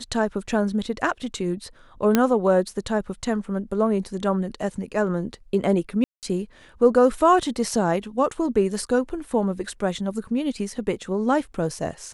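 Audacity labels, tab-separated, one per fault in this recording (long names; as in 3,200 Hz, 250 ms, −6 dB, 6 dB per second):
2.150000	2.150000	click −4 dBFS
6.040000	6.230000	drop-out 188 ms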